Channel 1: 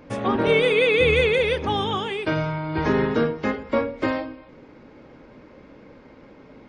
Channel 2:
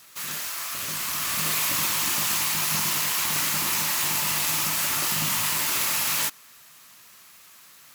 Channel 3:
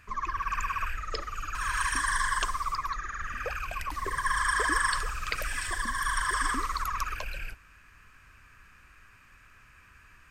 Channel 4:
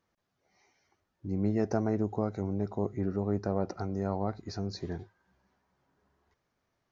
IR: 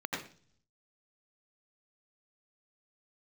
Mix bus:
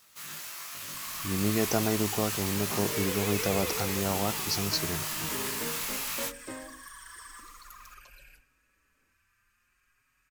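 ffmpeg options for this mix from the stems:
-filter_complex "[0:a]agate=range=0.0224:threshold=0.0178:ratio=3:detection=peak,adelay=2450,volume=0.126[s0];[1:a]flanger=delay=18.5:depth=2.9:speed=0.4,volume=0.501[s1];[2:a]alimiter=limit=0.0668:level=0:latency=1:release=32,crystalizer=i=3:c=0,asplit=2[s2][s3];[s3]adelay=5.1,afreqshift=0.55[s4];[s2][s4]amix=inputs=2:normalize=1,adelay=850,volume=0.141,asplit=2[s5][s6];[s6]volume=0.188[s7];[3:a]crystalizer=i=7:c=0,volume=1.06[s8];[4:a]atrim=start_sample=2205[s9];[s7][s9]afir=irnorm=-1:irlink=0[s10];[s0][s1][s5][s8][s10]amix=inputs=5:normalize=0"

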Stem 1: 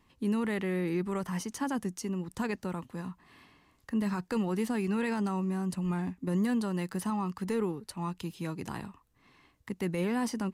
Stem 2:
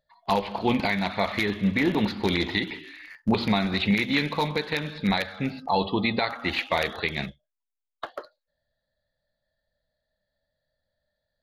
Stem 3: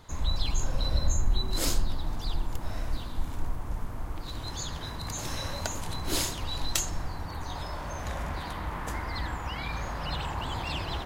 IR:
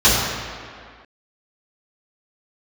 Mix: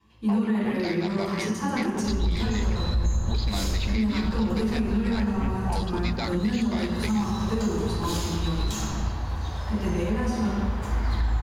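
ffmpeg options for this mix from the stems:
-filter_complex "[0:a]volume=0.944,asplit=2[s0][s1];[s1]volume=0.119[s2];[1:a]asoftclip=type=tanh:threshold=0.1,afwtdn=0.01,equalizer=f=4900:t=o:w=0.27:g=15,volume=0.596,asplit=2[s3][s4];[2:a]equalizer=f=79:w=4.5:g=6,aeval=exprs='sgn(val(0))*max(abs(val(0))-0.0075,0)':c=same,adelay=1950,volume=0.398,asplit=2[s5][s6];[s6]volume=0.168[s7];[s4]apad=whole_len=464725[s8];[s0][s8]sidechaingate=range=0.0224:threshold=0.02:ratio=16:detection=peak[s9];[3:a]atrim=start_sample=2205[s10];[s2][s7]amix=inputs=2:normalize=0[s11];[s11][s10]afir=irnorm=-1:irlink=0[s12];[s9][s3][s5][s12]amix=inputs=4:normalize=0,alimiter=limit=0.15:level=0:latency=1:release=189"

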